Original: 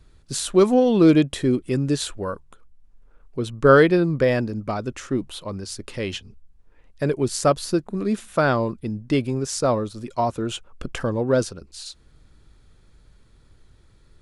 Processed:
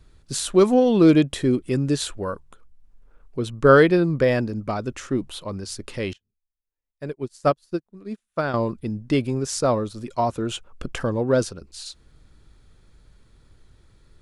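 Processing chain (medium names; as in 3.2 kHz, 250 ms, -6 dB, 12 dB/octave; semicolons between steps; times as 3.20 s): 6.13–8.54 s: upward expansion 2.5:1, over -38 dBFS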